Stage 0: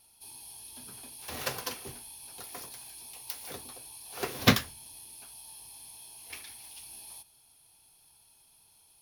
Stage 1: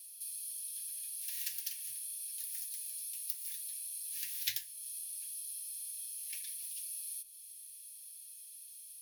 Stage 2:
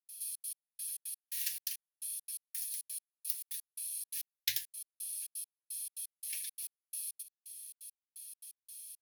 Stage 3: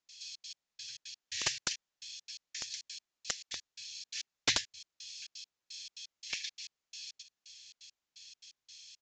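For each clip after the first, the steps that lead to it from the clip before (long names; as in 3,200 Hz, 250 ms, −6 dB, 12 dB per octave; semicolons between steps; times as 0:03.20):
Chebyshev band-stop filter 130–1,700 Hz, order 5; first-order pre-emphasis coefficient 0.97; downward compressor 2 to 1, threshold −54 dBFS, peak gain reduction 16 dB; level +9.5 dB
gate pattern ".xxx.x...xx.x." 171 BPM −60 dB; level +2.5 dB
wrap-around overflow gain 25 dB; downsampling to 16,000 Hz; level +10 dB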